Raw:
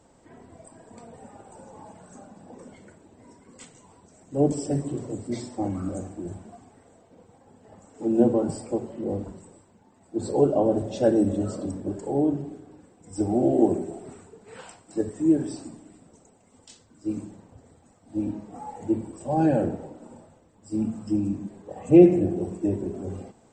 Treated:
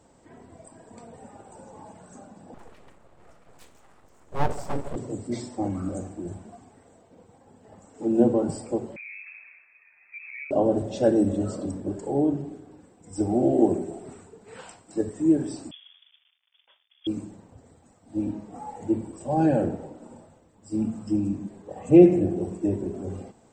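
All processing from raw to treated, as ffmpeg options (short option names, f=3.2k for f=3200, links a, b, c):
-filter_complex "[0:a]asettb=1/sr,asplit=3[a][b][c];[a]atrim=end=2.544[d];[b]atrim=start=2.54:end=4.96,asetpts=PTS-STARTPTS,afade=t=in:d=0.004:c=qsin,afade=t=out:st=2.416:d=0.004:c=qsin,aemphasis=mode=reproduction:type=50kf,aeval=exprs='abs(val(0))':c=same[e];[c]atrim=start=4.956[f];[d][e]acrossfade=d=0.004:c1=hsin:c2=qsin[g];[g][f]acrossfade=d=0.004:c1=qsin:c2=hsin,asettb=1/sr,asplit=3[h][i][j];[h]atrim=end=8.964[k];[i]atrim=start=8.96:end=10.51,asetpts=PTS-STARTPTS,afade=t=in:d=0.004:c=qsin,afade=t=out:st=1.546:d=0.004:c=qsin,acompressor=threshold=-40dB:ratio=4:attack=3.2:release=140:knee=1:detection=peak,lowpass=f=2.3k:t=q:w=0.5098,lowpass=f=2.3k:t=q:w=0.6013,lowpass=f=2.3k:t=q:w=0.9,lowpass=f=2.3k:t=q:w=2.563,afreqshift=-2700[l];[j]atrim=start=10.506[m];[k][l]acrossfade=d=0.004:c1=hsin:c2=qsin[n];[n][m]acrossfade=d=0.004:c1=qsin:c2=hsin,asettb=1/sr,asplit=3[o][p][q];[o]atrim=end=15.714[r];[p]atrim=start=15.71:end=17.07,asetpts=PTS-STARTPTS,afade=t=in:d=0.004:c=qsin,afade=t=out:st=1.356:d=0.004:c=qsin,aeval=exprs='sgn(val(0))*max(abs(val(0))-0.00158,0)':c=same,lowpass=f=3.1k:t=q:w=0.5098,lowpass=f=3.1k:t=q:w=0.6013,lowpass=f=3.1k:t=q:w=0.9,lowpass=f=3.1k:t=q:w=2.563,afreqshift=-3600,highpass=660[s];[q]atrim=start=17.066[t];[r][s]acrossfade=d=0.004:c1=hsin:c2=qsin[u];[u][t]acrossfade=d=0.004:c1=qsin:c2=hsin"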